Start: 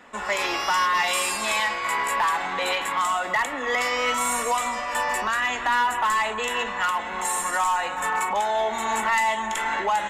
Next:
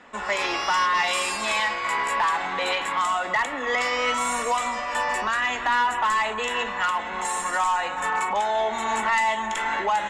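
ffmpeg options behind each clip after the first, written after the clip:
-af "lowpass=7.4k"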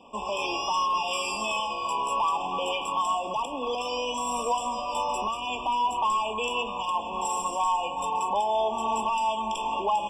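-af "alimiter=limit=-18.5dB:level=0:latency=1:release=216,afftfilt=real='re*eq(mod(floor(b*sr/1024/1200),2),0)':imag='im*eq(mod(floor(b*sr/1024/1200),2),0)':win_size=1024:overlap=0.75"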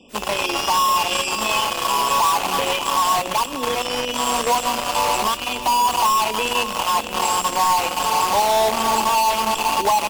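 -filter_complex "[0:a]acrossover=split=540|2000[a][b][c];[b]acrusher=bits=4:mix=0:aa=0.000001[d];[a][d][c]amix=inputs=3:normalize=0,aecho=1:1:592:0.224,volume=7.5dB" -ar 44100 -c:a wmav2 -b:a 64k

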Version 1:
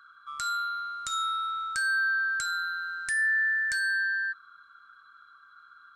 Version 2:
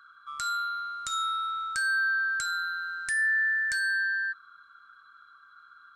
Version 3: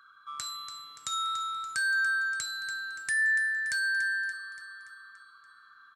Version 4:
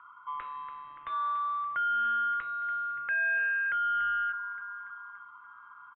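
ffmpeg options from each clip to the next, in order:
-af anull
-af "highpass=f=78:w=0.5412,highpass=f=78:w=1.3066,bandreject=f=1.4k:w=11,aecho=1:1:287|574|861|1148|1435|1722:0.316|0.177|0.0992|0.0555|0.0311|0.0174"
-af "aresample=8000,asoftclip=type=tanh:threshold=-31.5dB,aresample=44100,highpass=f=190:t=q:w=0.5412,highpass=f=190:t=q:w=1.307,lowpass=f=2.7k:t=q:w=0.5176,lowpass=f=2.7k:t=q:w=0.7071,lowpass=f=2.7k:t=q:w=1.932,afreqshift=-160,volume=5dB"

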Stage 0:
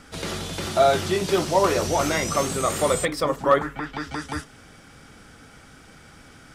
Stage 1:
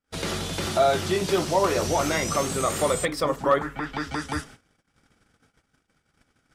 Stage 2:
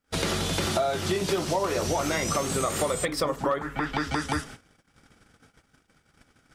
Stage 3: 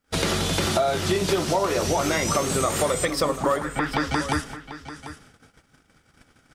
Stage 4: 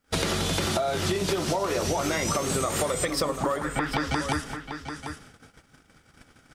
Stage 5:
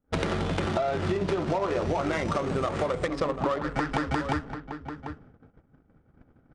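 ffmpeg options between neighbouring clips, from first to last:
-filter_complex "[0:a]agate=range=-41dB:threshold=-44dB:ratio=16:detection=peak,asplit=2[a][b];[b]alimiter=limit=-17dB:level=0:latency=1:release=395,volume=2dB[c];[a][c]amix=inputs=2:normalize=0,volume=-6dB"
-af "acompressor=threshold=-29dB:ratio=6,volume=5.5dB"
-af "aecho=1:1:742:0.211,volume=3.5dB"
-af "acompressor=threshold=-25dB:ratio=6,volume=2dB"
-af "adynamicsmooth=sensitivity=2.5:basefreq=700,aresample=22050,aresample=44100"

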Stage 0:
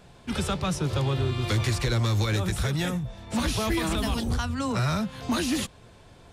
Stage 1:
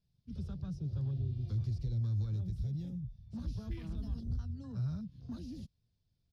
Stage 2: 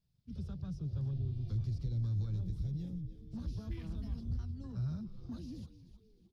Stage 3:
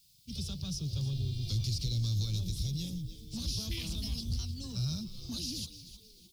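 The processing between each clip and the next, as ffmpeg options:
-af "afwtdn=0.0316,firequalizer=gain_entry='entry(130,0);entry(330,-14);entry(530,-18);entry(970,-23);entry(5000,1);entry(7600,-16);entry(13000,-10)':delay=0.05:min_phase=1,volume=-8dB"
-filter_complex "[0:a]asplit=5[a][b][c][d][e];[b]adelay=307,afreqshift=-140,volume=-13dB[f];[c]adelay=614,afreqshift=-280,volume=-21dB[g];[d]adelay=921,afreqshift=-420,volume=-28.9dB[h];[e]adelay=1228,afreqshift=-560,volume=-36.9dB[i];[a][f][g][h][i]amix=inputs=5:normalize=0,volume=-1dB"
-af "aexciter=amount=13.5:drive=4.2:freq=2.5k,volume=2.5dB"

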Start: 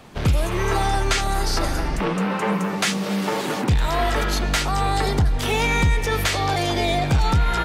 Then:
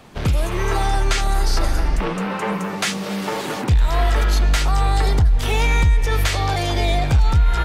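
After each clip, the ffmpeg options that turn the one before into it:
-af "asubboost=boost=4:cutoff=86,acompressor=threshold=-11dB:ratio=6"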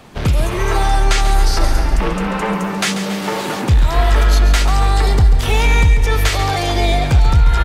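-af "aecho=1:1:139|278|417|556|695|834:0.299|0.155|0.0807|0.042|0.0218|0.0114,volume=3.5dB"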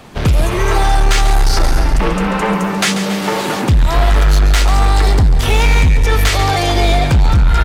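-af "asoftclip=type=hard:threshold=-10dB,volume=3.5dB"

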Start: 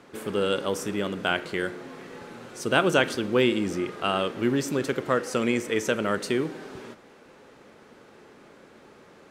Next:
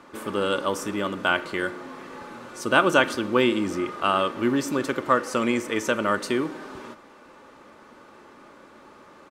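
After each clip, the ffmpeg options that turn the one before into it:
-af "equalizer=f=1.1k:w=2.3:g=8.5,aecho=1:1:3.4:0.34"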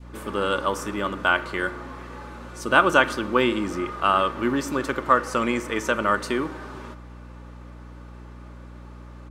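-af "aeval=exprs='val(0)+0.0112*(sin(2*PI*60*n/s)+sin(2*PI*2*60*n/s)/2+sin(2*PI*3*60*n/s)/3+sin(2*PI*4*60*n/s)/4+sin(2*PI*5*60*n/s)/5)':c=same,adynamicequalizer=threshold=0.0178:dfrequency=1200:dqfactor=0.97:tfrequency=1200:tqfactor=0.97:attack=5:release=100:ratio=0.375:range=2.5:mode=boostabove:tftype=bell,volume=-1.5dB"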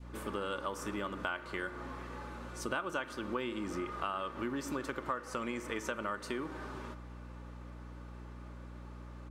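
-af "acompressor=threshold=-28dB:ratio=5,volume=-6dB"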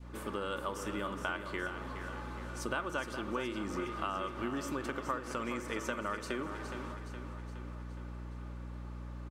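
-af "aecho=1:1:417|834|1251|1668|2085|2502:0.355|0.195|0.107|0.059|0.0325|0.0179"

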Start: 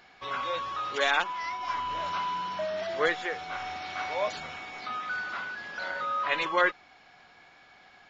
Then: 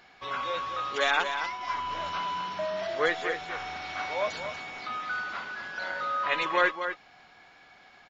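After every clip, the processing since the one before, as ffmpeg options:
-af "aecho=1:1:237:0.376"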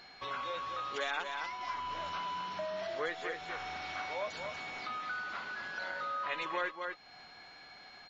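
-af "aeval=exprs='val(0)+0.00158*sin(2*PI*4200*n/s)':c=same,acompressor=threshold=-41dB:ratio=2"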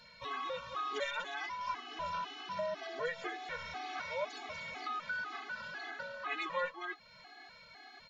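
-af "afftfilt=real='re*gt(sin(2*PI*2*pts/sr)*(1-2*mod(floor(b*sr/1024/220),2)),0)':imag='im*gt(sin(2*PI*2*pts/sr)*(1-2*mod(floor(b*sr/1024/220),2)),0)':win_size=1024:overlap=0.75,volume=2dB"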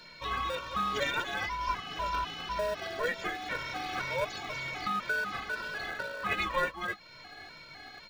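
-filter_complex "[0:a]lowshelf=f=330:g=-11,asplit=2[a][b];[b]acrusher=samples=42:mix=1:aa=0.000001,volume=-10dB[c];[a][c]amix=inputs=2:normalize=0,volume=7dB"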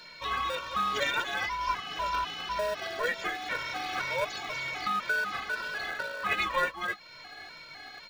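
-af "lowshelf=f=380:g=-7.5,volume=3dB"

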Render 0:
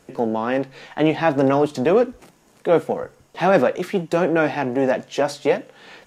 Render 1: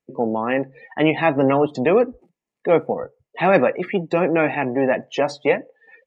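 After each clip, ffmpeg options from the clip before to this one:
-af "afftdn=nr=33:nf=-35,equalizer=f=2.2k:t=o:w=0.83:g=7.5,bandreject=f=1.5k:w=6.8"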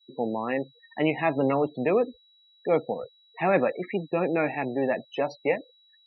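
-af "aeval=exprs='val(0)+0.00562*sin(2*PI*3900*n/s)':c=same,afftdn=nr=20:nf=-29,afftfilt=real='re*gte(hypot(re,im),0.0112)':imag='im*gte(hypot(re,im),0.0112)':win_size=1024:overlap=0.75,volume=-7dB"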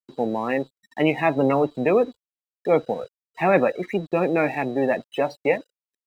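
-af "aeval=exprs='sgn(val(0))*max(abs(val(0))-0.00224,0)':c=same,volume=4.5dB"

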